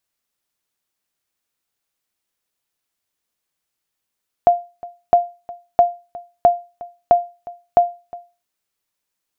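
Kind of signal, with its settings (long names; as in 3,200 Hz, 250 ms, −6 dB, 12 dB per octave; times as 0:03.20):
ping with an echo 699 Hz, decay 0.30 s, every 0.66 s, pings 6, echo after 0.36 s, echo −21 dB −3.5 dBFS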